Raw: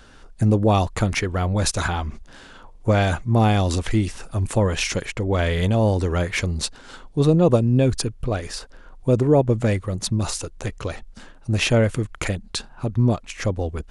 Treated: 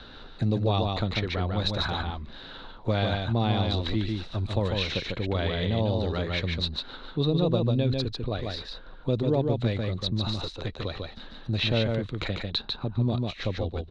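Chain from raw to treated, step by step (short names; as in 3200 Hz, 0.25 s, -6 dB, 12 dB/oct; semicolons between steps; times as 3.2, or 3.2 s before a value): synth low-pass 3900 Hz, resonance Q 14; high shelf 2500 Hz -10.5 dB; echo 0.146 s -4 dB; three-band squash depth 40%; gain -8 dB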